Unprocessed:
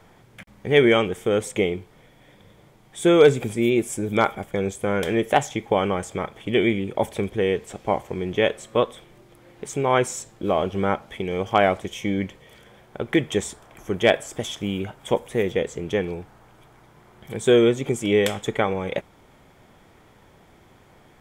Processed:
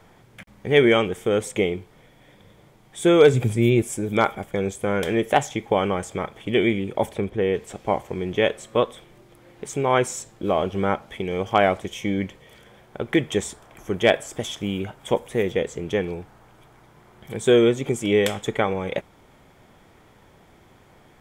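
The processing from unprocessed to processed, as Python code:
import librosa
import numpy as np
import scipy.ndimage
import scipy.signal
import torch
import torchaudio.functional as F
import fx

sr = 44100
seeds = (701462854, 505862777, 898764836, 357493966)

y = fx.peak_eq(x, sr, hz=120.0, db=11.0, octaves=0.77, at=(3.33, 3.82))
y = fx.high_shelf(y, sr, hz=3500.0, db=-10.5, at=(7.12, 7.53), fade=0.02)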